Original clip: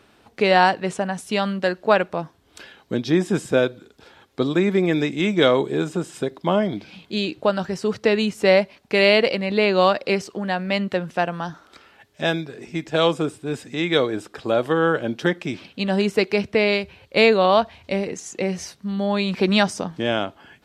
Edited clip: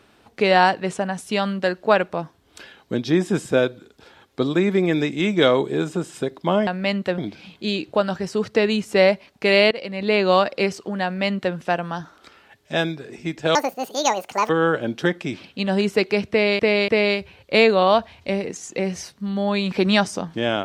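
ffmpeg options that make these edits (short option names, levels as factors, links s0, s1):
-filter_complex "[0:a]asplit=8[s0][s1][s2][s3][s4][s5][s6][s7];[s0]atrim=end=6.672[s8];[s1]atrim=start=10.528:end=11.042[s9];[s2]atrim=start=6.668:end=9.2,asetpts=PTS-STARTPTS,afade=t=out:st=2.528:d=0.004:c=hsin:silence=0.133352[s10];[s3]atrim=start=9.2:end=13.044,asetpts=PTS-STARTPTS,afade=t=in:d=0.44:silence=0.133352[s11];[s4]atrim=start=13.04:end=14.7,asetpts=PTS-STARTPTS,asetrate=77616,aresample=44100,atrim=end_sample=41594,asetpts=PTS-STARTPTS[s12];[s5]atrim=start=14.696:end=16.802[s13];[s6]atrim=start=16.508:end=16.802[s14];[s7]atrim=start=16.508[s15];[s8][s9]acrossfade=d=0.004:c1=hsin:c2=hsin[s16];[s10][s11]concat=n=2:v=0:a=1[s17];[s16][s17]acrossfade=d=0.004:c1=hsin:c2=hsin[s18];[s18][s12]acrossfade=d=0.004:c1=hsin:c2=hsin[s19];[s19][s13]acrossfade=d=0.004:c1=hsin:c2=hsin[s20];[s20][s14]acrossfade=d=0.004:c1=hsin:c2=hsin[s21];[s21][s15]acrossfade=d=0.004:c1=hsin:c2=hsin"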